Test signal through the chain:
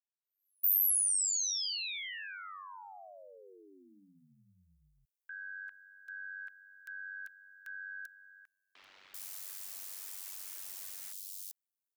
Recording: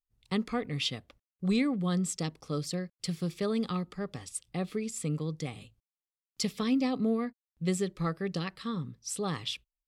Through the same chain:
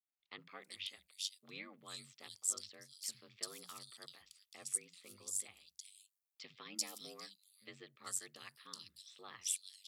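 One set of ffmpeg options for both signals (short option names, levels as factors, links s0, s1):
-filter_complex "[0:a]aderivative,aeval=exprs='val(0)*sin(2*PI*48*n/s)':c=same,acrossover=split=170|3400[s0][s1][s2];[s0]adelay=60[s3];[s2]adelay=390[s4];[s3][s1][s4]amix=inputs=3:normalize=0,volume=1.41"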